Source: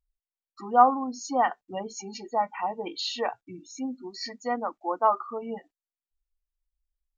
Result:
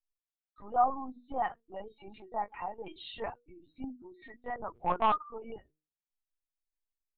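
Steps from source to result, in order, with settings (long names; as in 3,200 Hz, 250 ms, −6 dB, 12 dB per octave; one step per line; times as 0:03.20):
mains-hum notches 60/120/180/240/300/360/420/480 Hz
0:04.75–0:05.18: mid-hump overdrive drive 20 dB, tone 2,100 Hz, clips at −9.5 dBFS
linear-prediction vocoder at 8 kHz pitch kept
level −8.5 dB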